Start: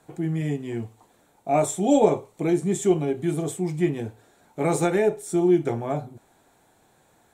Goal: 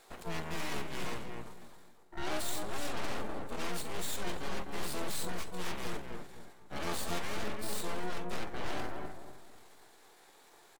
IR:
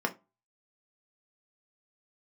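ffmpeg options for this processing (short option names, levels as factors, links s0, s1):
-filter_complex "[0:a]highpass=850,areverse,acompressor=threshold=0.00891:ratio=5,areverse,atempo=0.68,aeval=exprs='0.0316*(cos(1*acos(clip(val(0)/0.0316,-1,1)))-cos(1*PI/2))+0.00562*(cos(2*acos(clip(val(0)/0.0316,-1,1)))-cos(2*PI/2))+0.00112*(cos(3*acos(clip(val(0)/0.0316,-1,1)))-cos(3*PI/2))+0.00447*(cos(4*acos(clip(val(0)/0.0316,-1,1)))-cos(4*PI/2))+0.00794*(cos(8*acos(clip(val(0)/0.0316,-1,1)))-cos(8*PI/2))':c=same,asplit=2[s0][s1];[s1]adelay=254,lowpass=f=1200:p=1,volume=0.562,asplit=2[s2][s3];[s3]adelay=254,lowpass=f=1200:p=1,volume=0.37,asplit=2[s4][s5];[s5]adelay=254,lowpass=f=1200:p=1,volume=0.37,asplit=2[s6][s7];[s7]adelay=254,lowpass=f=1200:p=1,volume=0.37,asplit=2[s8][s9];[s9]adelay=254,lowpass=f=1200:p=1,volume=0.37[s10];[s2][s4][s6][s8][s10]amix=inputs=5:normalize=0[s11];[s0][s11]amix=inputs=2:normalize=0,aeval=exprs='0.0251*(abs(mod(val(0)/0.0251+3,4)-2)-1)':c=same,asplit=3[s12][s13][s14];[s13]asetrate=22050,aresample=44100,atempo=2,volume=1[s15];[s14]asetrate=58866,aresample=44100,atempo=0.749154,volume=0.631[s16];[s12][s15][s16]amix=inputs=3:normalize=0,volume=1.12"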